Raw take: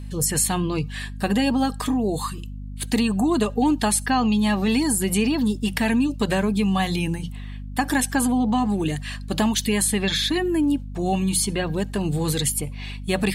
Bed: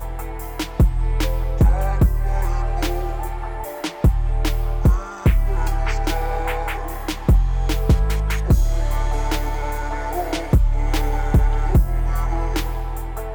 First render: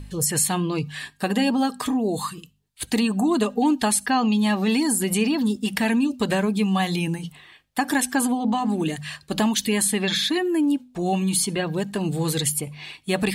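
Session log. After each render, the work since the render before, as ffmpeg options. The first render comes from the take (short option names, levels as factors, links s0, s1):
-af "bandreject=f=50:t=h:w=4,bandreject=f=100:t=h:w=4,bandreject=f=150:t=h:w=4,bandreject=f=200:t=h:w=4,bandreject=f=250:t=h:w=4"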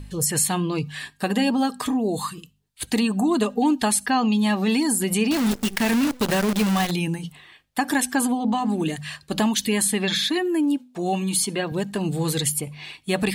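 -filter_complex "[0:a]asettb=1/sr,asplit=3[s0][s1][s2];[s0]atrim=end=5.314[s3];[s1]atrim=start=5.31:end=6.91,asetpts=PTS-STARTPTS,afade=t=in:d=0.004:c=qsin,afade=t=out:st=1.596:d=0.004:c=qsin,acrusher=bits=5:dc=4:mix=0:aa=0.000001[s4];[s2]atrim=start=6.906[s5];[s3][s4]acrossfade=d=0.004:c1=hsin:c2=qsin[s6];[s6][s5]acrossfade=d=0.004:c1=qsin:c2=hsin,asettb=1/sr,asplit=3[s7][s8][s9];[s7]atrim=end=10.284[s10];[s8]atrim=start=10.28:end=11.72,asetpts=PTS-STARTPTS,afade=t=in:d=0.004:c=qsin,afade=t=out:st=1.436:d=0.004:c=qsin,highpass=180[s11];[s9]atrim=start=11.716[s12];[s10][s11]acrossfade=d=0.004:c1=hsin:c2=qsin[s13];[s13][s12]acrossfade=d=0.004:c1=qsin:c2=hsin"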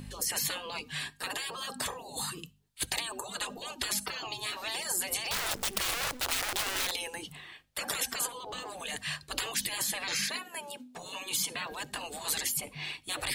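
-af "afftfilt=real='re*lt(hypot(re,im),0.1)':imag='im*lt(hypot(re,im),0.1)':win_size=1024:overlap=0.75"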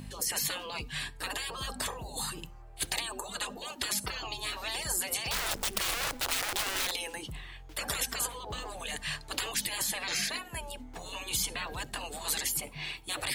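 -filter_complex "[1:a]volume=0.0335[s0];[0:a][s0]amix=inputs=2:normalize=0"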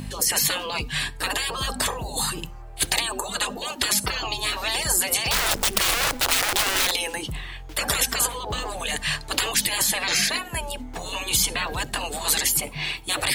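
-af "volume=3.16"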